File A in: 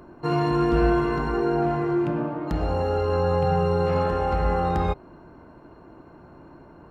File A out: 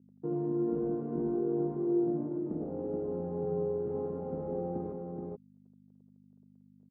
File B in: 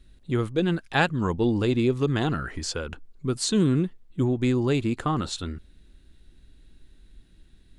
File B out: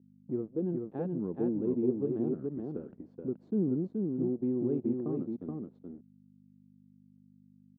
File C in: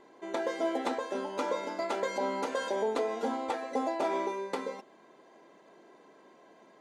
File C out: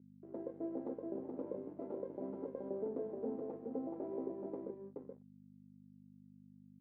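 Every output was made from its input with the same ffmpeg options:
-filter_complex "[0:a]asplit=2[link_01][link_02];[link_02]acompressor=threshold=-31dB:ratio=6,volume=1dB[link_03];[link_01][link_03]amix=inputs=2:normalize=0,aeval=exprs='sgn(val(0))*max(abs(val(0))-0.0237,0)':channel_layout=same,aecho=1:1:426:0.668,aeval=exprs='val(0)+0.00891*(sin(2*PI*50*n/s)+sin(2*PI*2*50*n/s)/2+sin(2*PI*3*50*n/s)/3+sin(2*PI*4*50*n/s)/4+sin(2*PI*5*50*n/s)/5)':channel_layout=same,asuperpass=centerf=280:order=4:qfactor=0.99,volume=-7.5dB"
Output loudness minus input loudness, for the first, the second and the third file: −10.0, −8.0, −10.5 LU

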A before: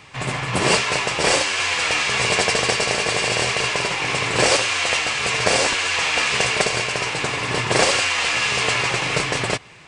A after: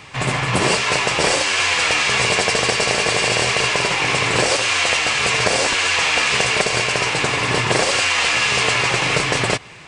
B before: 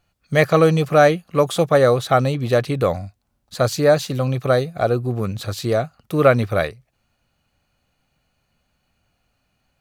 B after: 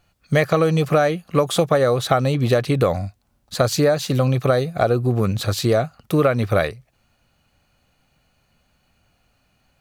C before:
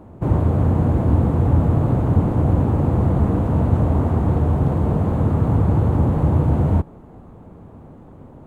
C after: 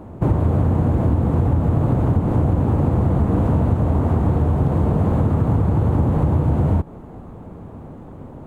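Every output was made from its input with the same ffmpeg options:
-af "acompressor=threshold=-18dB:ratio=12,volume=5dB"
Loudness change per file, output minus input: +2.5, −1.0, 0.0 LU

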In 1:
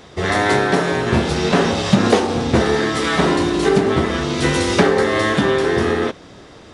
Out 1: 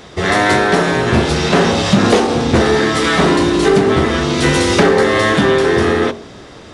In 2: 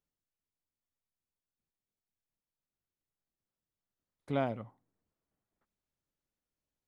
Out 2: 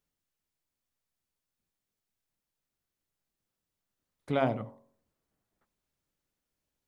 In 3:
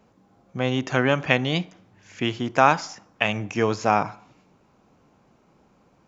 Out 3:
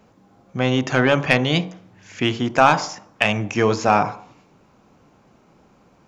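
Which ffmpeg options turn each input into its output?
-af "bandreject=frequency=45.86:width_type=h:width=4,bandreject=frequency=91.72:width_type=h:width=4,bandreject=frequency=137.58:width_type=h:width=4,bandreject=frequency=183.44:width_type=h:width=4,bandreject=frequency=229.3:width_type=h:width=4,bandreject=frequency=275.16:width_type=h:width=4,bandreject=frequency=321.02:width_type=h:width=4,bandreject=frequency=366.88:width_type=h:width=4,bandreject=frequency=412.74:width_type=h:width=4,bandreject=frequency=458.6:width_type=h:width=4,bandreject=frequency=504.46:width_type=h:width=4,bandreject=frequency=550.32:width_type=h:width=4,bandreject=frequency=596.18:width_type=h:width=4,bandreject=frequency=642.04:width_type=h:width=4,bandreject=frequency=687.9:width_type=h:width=4,bandreject=frequency=733.76:width_type=h:width=4,bandreject=frequency=779.62:width_type=h:width=4,bandreject=frequency=825.48:width_type=h:width=4,bandreject=frequency=871.34:width_type=h:width=4,bandreject=frequency=917.2:width_type=h:width=4,bandreject=frequency=963.06:width_type=h:width=4,bandreject=frequency=1008.92:width_type=h:width=4,bandreject=frequency=1054.78:width_type=h:width=4,bandreject=frequency=1100.64:width_type=h:width=4,bandreject=frequency=1146.5:width_type=h:width=4,acontrast=67,volume=-1dB"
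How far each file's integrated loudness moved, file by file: +4.0, +4.5, +4.0 LU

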